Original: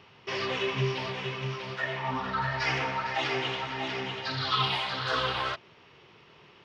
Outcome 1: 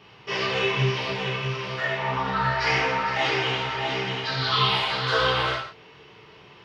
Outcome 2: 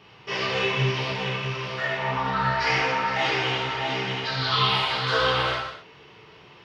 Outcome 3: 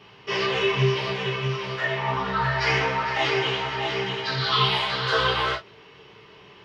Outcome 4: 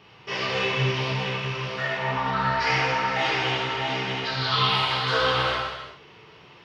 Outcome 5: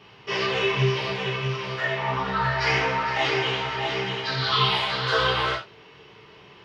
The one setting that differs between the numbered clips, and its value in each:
reverb whose tail is shaped and stops, gate: 200, 300, 80, 450, 120 milliseconds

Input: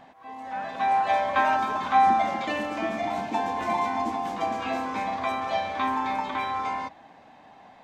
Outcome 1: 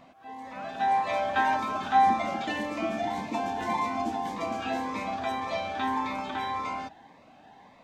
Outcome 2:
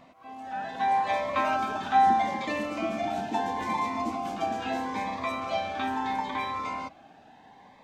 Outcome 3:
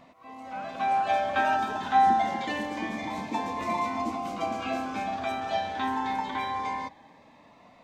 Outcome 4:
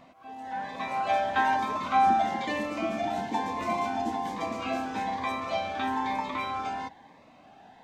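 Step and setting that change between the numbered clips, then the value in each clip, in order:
phaser whose notches keep moving one way, speed: 1.8, 0.75, 0.26, 1.1 Hertz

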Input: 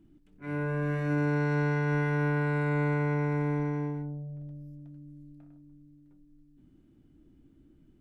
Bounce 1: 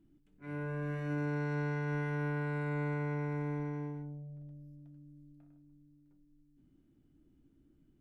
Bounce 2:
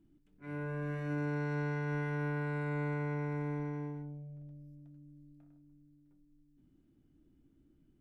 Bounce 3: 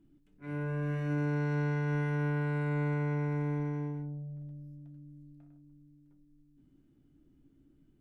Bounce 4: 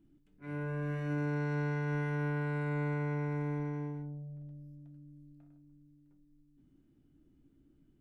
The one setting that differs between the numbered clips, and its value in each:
tuned comb filter, decay: 1, 2.1, 0.19, 0.46 seconds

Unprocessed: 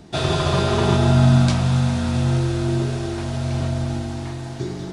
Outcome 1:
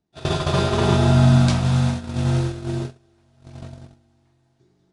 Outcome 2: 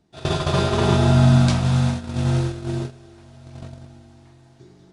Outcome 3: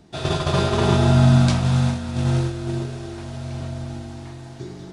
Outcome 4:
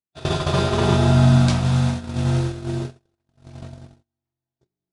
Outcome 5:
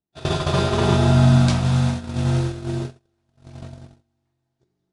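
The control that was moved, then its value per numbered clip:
noise gate, range: −33, −20, −7, −58, −45 decibels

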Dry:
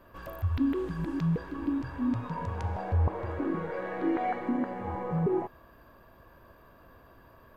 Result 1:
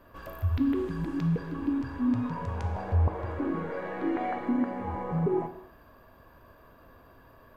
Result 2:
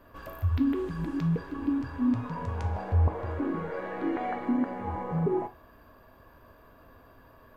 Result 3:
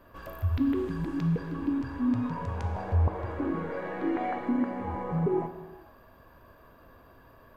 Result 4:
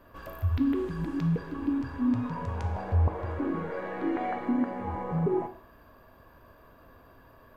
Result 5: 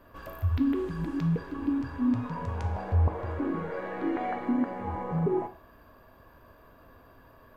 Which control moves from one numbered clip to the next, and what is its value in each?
reverb whose tail is shaped and stops, gate: 330, 100, 500, 220, 150 milliseconds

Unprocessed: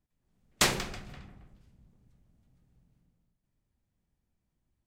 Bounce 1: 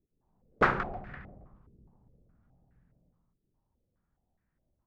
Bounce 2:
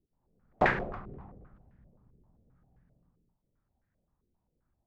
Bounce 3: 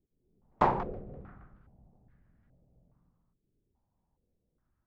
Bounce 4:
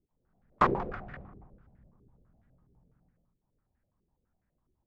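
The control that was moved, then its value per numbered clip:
low-pass on a step sequencer, speed: 4.8, 7.6, 2.4, 12 Hertz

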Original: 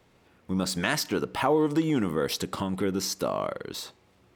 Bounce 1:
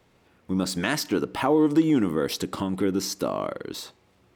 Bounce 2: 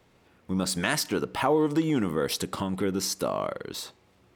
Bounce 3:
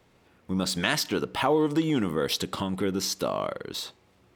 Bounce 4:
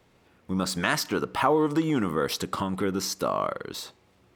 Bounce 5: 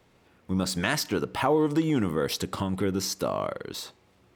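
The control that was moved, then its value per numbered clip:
dynamic equaliser, frequency: 300, 9,700, 3,400, 1,200, 100 Hertz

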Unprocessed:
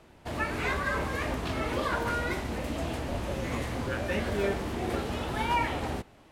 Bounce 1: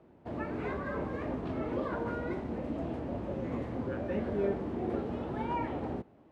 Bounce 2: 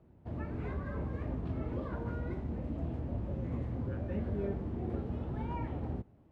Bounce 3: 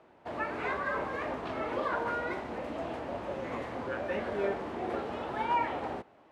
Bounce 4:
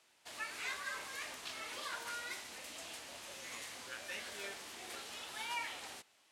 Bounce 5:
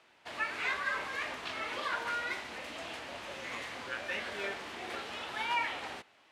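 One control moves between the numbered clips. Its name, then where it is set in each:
resonant band-pass, frequency: 280, 110, 730, 7,600, 2,700 Hertz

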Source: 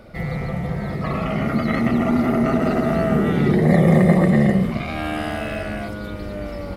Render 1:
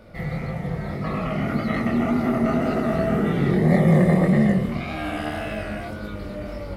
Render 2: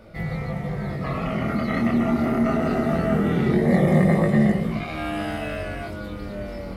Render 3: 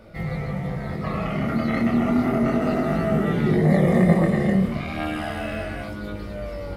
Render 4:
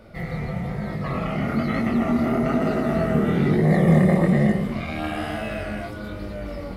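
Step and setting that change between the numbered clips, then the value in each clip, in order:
chorus effect, speed: 1.8, 0.21, 0.31, 1.1 Hertz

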